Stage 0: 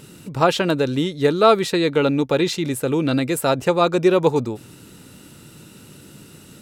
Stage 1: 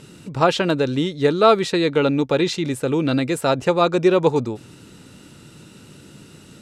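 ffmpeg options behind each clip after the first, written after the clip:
ffmpeg -i in.wav -af "lowpass=8100" out.wav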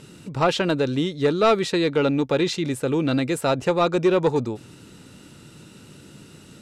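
ffmpeg -i in.wav -af "asoftclip=type=tanh:threshold=-8.5dB,volume=-1.5dB" out.wav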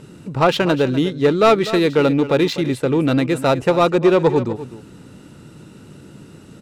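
ffmpeg -i in.wav -filter_complex "[0:a]asplit=2[link_01][link_02];[link_02]adynamicsmooth=sensitivity=4:basefreq=2000,volume=2dB[link_03];[link_01][link_03]amix=inputs=2:normalize=0,aecho=1:1:249:0.2,volume=-2dB" out.wav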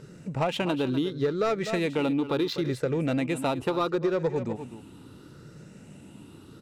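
ffmpeg -i in.wav -af "afftfilt=real='re*pow(10,7/40*sin(2*PI*(0.57*log(max(b,1)*sr/1024/100)/log(2)-(0.73)*(pts-256)/sr)))':imag='im*pow(10,7/40*sin(2*PI*(0.57*log(max(b,1)*sr/1024/100)/log(2)-(0.73)*(pts-256)/sr)))':win_size=1024:overlap=0.75,acompressor=threshold=-16dB:ratio=6,volume=-7dB" out.wav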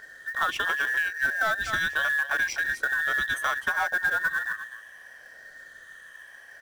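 ffmpeg -i in.wav -af "afftfilt=real='real(if(between(b,1,1012),(2*floor((b-1)/92)+1)*92-b,b),0)':imag='imag(if(between(b,1,1012),(2*floor((b-1)/92)+1)*92-b,b),0)*if(between(b,1,1012),-1,1)':win_size=2048:overlap=0.75,acrusher=bits=5:mode=log:mix=0:aa=0.000001" out.wav

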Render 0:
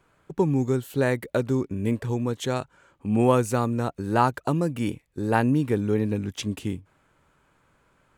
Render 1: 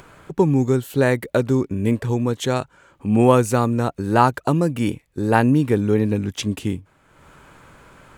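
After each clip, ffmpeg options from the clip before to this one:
ffmpeg -i in.wav -af "acompressor=mode=upward:threshold=-41dB:ratio=2.5,volume=5.5dB" out.wav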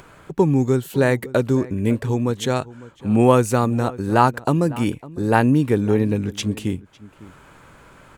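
ffmpeg -i in.wav -filter_complex "[0:a]asplit=2[link_01][link_02];[link_02]adelay=553.9,volume=-19dB,highshelf=frequency=4000:gain=-12.5[link_03];[link_01][link_03]amix=inputs=2:normalize=0" out.wav

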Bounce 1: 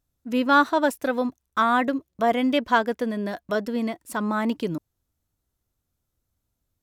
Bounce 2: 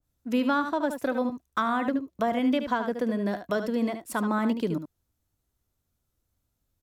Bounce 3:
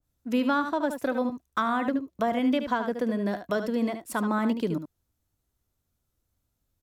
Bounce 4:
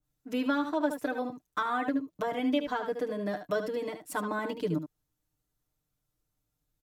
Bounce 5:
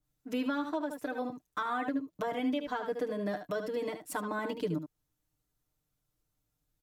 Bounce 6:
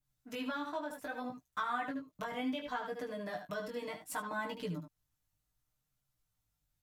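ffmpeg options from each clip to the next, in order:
ffmpeg -i in.wav -filter_complex "[0:a]aecho=1:1:74:0.335,acrossover=split=200[link_01][link_02];[link_02]acompressor=threshold=-23dB:ratio=6[link_03];[link_01][link_03]amix=inputs=2:normalize=0,adynamicequalizer=threshold=0.0112:dfrequency=1600:dqfactor=0.7:tfrequency=1600:tqfactor=0.7:attack=5:release=100:ratio=0.375:range=3:mode=cutabove:tftype=highshelf" out.wav
ffmpeg -i in.wav -af anull out.wav
ffmpeg -i in.wav -af "aecho=1:1:6.6:0.98,volume=-6dB" out.wav
ffmpeg -i in.wav -af "alimiter=limit=-23.5dB:level=0:latency=1:release=314" out.wav
ffmpeg -i in.wav -af "equalizer=frequency=360:width_type=o:width=1.1:gain=-11,flanger=delay=15:depth=5.8:speed=0.67,volume=2dB" out.wav

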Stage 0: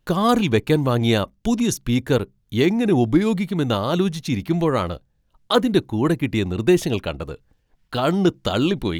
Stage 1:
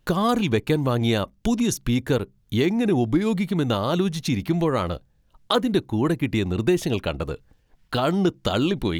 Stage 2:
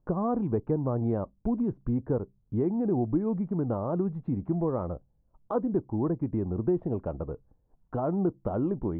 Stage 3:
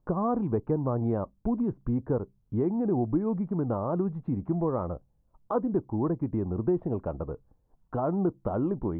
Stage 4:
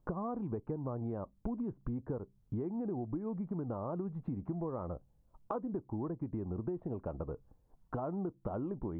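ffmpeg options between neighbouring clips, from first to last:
ffmpeg -i in.wav -af "acompressor=threshold=-26dB:ratio=2,volume=3.5dB" out.wav
ffmpeg -i in.wav -af "lowpass=frequency=1000:width=0.5412,lowpass=frequency=1000:width=1.3066,volume=-6dB" out.wav
ffmpeg -i in.wav -af "equalizer=frequency=1100:width_type=o:width=0.95:gain=3.5" out.wav
ffmpeg -i in.wav -af "acompressor=threshold=-35dB:ratio=6" out.wav

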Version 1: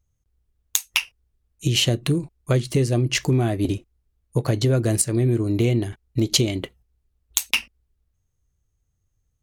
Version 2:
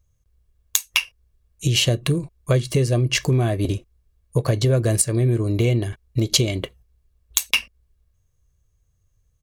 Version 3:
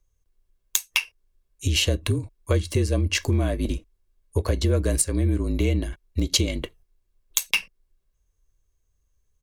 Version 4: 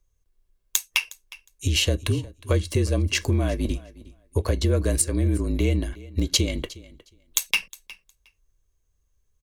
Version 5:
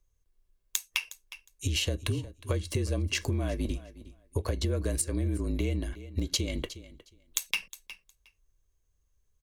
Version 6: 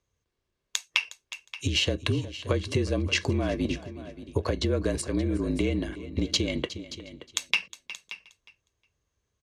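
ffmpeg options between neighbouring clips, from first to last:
ffmpeg -i in.wav -filter_complex "[0:a]aecho=1:1:1.8:0.38,asplit=2[link_01][link_02];[link_02]acompressor=threshold=-29dB:ratio=6,volume=-1.5dB[link_03];[link_01][link_03]amix=inputs=2:normalize=0,volume=-1dB" out.wav
ffmpeg -i in.wav -af "afreqshift=-42,volume=-3dB" out.wav
ffmpeg -i in.wav -af "aecho=1:1:361|722:0.1|0.016" out.wav
ffmpeg -i in.wav -af "acompressor=threshold=-23dB:ratio=4,volume=-3dB" out.wav
ffmpeg -i in.wav -af "highpass=110,lowpass=5100,aecho=1:1:577:0.178,volume=6dB" out.wav

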